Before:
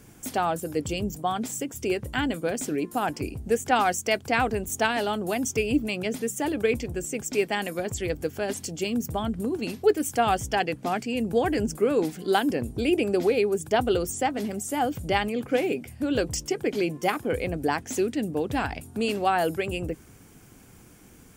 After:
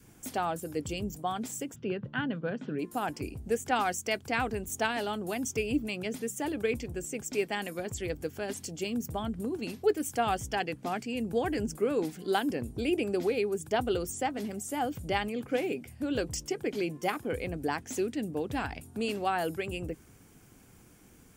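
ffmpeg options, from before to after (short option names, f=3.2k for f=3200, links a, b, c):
-filter_complex "[0:a]asplit=3[a][b][c];[a]afade=t=out:st=1.74:d=0.02[d];[b]highpass=f=120:w=0.5412,highpass=f=120:w=1.3066,equalizer=f=130:t=q:w=4:g=8,equalizer=f=190:t=q:w=4:g=8,equalizer=f=330:t=q:w=4:g=-5,equalizer=f=740:t=q:w=4:g=-5,equalizer=f=1.5k:t=q:w=4:g=4,equalizer=f=2.2k:t=q:w=4:g=-9,lowpass=f=3.2k:w=0.5412,lowpass=f=3.2k:w=1.3066,afade=t=in:st=1.74:d=0.02,afade=t=out:st=2.78:d=0.02[e];[c]afade=t=in:st=2.78:d=0.02[f];[d][e][f]amix=inputs=3:normalize=0,adynamicequalizer=threshold=0.0141:dfrequency=620:dqfactor=1.9:tfrequency=620:tqfactor=1.9:attack=5:release=100:ratio=0.375:range=2:mode=cutabove:tftype=bell,volume=-5.5dB"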